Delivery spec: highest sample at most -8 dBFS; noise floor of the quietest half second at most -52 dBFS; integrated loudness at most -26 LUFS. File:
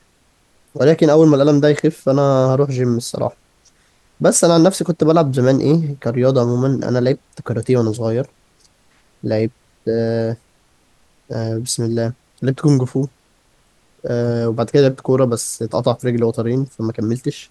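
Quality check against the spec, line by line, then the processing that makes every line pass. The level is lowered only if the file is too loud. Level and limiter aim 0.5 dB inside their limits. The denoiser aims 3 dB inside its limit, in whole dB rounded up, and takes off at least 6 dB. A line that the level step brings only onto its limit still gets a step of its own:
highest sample -2.0 dBFS: fail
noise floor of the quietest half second -57 dBFS: pass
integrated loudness -17.0 LUFS: fail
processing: trim -9.5 dB

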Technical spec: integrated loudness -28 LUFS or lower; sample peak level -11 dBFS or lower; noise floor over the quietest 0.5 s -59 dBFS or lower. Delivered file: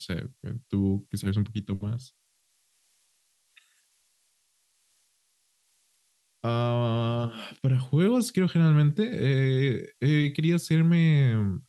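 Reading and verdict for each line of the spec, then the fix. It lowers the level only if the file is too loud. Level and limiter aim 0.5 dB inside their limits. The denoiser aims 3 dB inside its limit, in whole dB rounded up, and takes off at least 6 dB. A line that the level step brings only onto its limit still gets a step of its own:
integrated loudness -25.5 LUFS: fail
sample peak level -12.5 dBFS: pass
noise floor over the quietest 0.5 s -71 dBFS: pass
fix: trim -3 dB

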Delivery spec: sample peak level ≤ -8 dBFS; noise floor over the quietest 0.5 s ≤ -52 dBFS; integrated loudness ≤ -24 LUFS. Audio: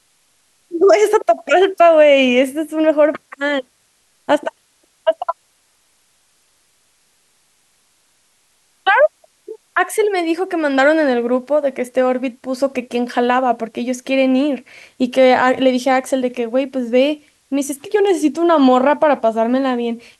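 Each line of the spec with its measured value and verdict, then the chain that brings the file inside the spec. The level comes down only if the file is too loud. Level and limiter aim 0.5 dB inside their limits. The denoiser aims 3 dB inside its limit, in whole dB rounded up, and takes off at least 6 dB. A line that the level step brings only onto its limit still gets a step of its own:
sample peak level -2.5 dBFS: fail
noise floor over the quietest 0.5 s -60 dBFS: pass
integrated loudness -16.0 LUFS: fail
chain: trim -8.5 dB

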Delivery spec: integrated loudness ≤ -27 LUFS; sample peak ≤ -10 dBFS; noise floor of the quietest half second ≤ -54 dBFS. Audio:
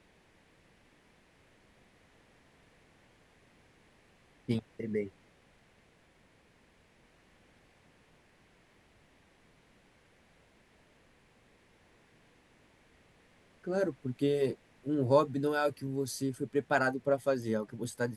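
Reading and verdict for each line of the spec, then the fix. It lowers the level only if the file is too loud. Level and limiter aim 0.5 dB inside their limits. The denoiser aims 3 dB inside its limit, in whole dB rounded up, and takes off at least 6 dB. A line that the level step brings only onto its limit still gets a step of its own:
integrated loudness -32.5 LUFS: pass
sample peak -13.0 dBFS: pass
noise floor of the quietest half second -65 dBFS: pass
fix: none needed

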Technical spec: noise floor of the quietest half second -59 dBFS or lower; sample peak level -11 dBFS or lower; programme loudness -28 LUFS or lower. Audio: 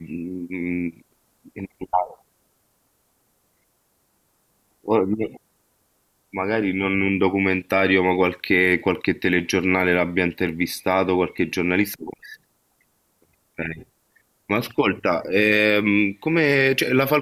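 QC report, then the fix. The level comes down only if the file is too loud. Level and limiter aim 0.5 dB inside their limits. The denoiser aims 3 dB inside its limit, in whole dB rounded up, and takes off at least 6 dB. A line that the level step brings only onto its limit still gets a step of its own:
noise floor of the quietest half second -67 dBFS: pass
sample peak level -6.0 dBFS: fail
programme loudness -21.0 LUFS: fail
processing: trim -7.5 dB

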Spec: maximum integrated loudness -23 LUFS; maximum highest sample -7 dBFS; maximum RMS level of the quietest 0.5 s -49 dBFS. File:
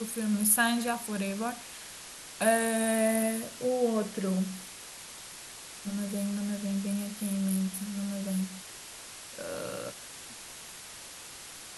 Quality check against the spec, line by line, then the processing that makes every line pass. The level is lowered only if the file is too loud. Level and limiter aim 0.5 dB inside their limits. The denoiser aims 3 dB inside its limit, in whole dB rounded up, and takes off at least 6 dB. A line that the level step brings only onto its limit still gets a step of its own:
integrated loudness -30.5 LUFS: pass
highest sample -12.0 dBFS: pass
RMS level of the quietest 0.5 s -46 dBFS: fail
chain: noise reduction 6 dB, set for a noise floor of -46 dBFS

